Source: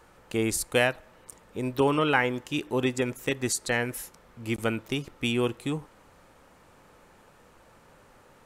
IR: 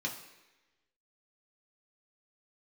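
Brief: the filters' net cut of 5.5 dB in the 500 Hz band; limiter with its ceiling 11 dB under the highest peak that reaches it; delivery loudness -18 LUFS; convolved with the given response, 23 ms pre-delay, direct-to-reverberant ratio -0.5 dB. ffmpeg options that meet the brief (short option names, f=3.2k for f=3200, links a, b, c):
-filter_complex "[0:a]equalizer=f=500:t=o:g=-7,alimiter=limit=-20.5dB:level=0:latency=1,asplit=2[a][b];[1:a]atrim=start_sample=2205,adelay=23[c];[b][c]afir=irnorm=-1:irlink=0,volume=-2.5dB[d];[a][d]amix=inputs=2:normalize=0,volume=11dB"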